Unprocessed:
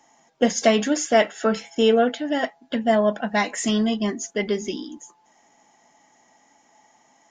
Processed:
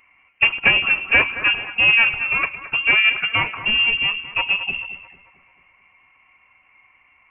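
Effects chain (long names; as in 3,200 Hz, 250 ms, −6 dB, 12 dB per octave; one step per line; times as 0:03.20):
phase distortion by the signal itself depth 0.29 ms
echo with a time of its own for lows and highs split 760 Hz, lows 104 ms, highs 220 ms, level −12.5 dB
voice inversion scrambler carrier 3,000 Hz
level +3 dB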